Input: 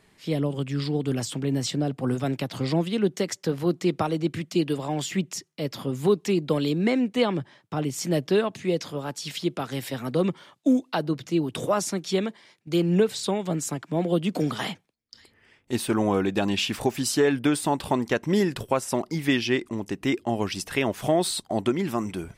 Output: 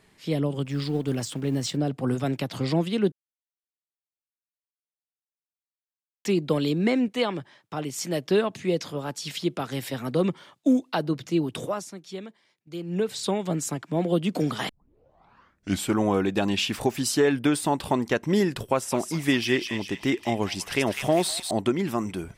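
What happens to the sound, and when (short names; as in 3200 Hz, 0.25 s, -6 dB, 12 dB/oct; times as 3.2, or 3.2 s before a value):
0.65–1.77 G.711 law mismatch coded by A
3.12–6.25 mute
7.08–8.31 low shelf 360 Hz -7.5 dB
11.46–13.26 dip -12 dB, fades 0.41 s
14.69 tape start 1.28 s
18.58–21.51 thin delay 0.2 s, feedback 48%, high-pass 1800 Hz, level -4 dB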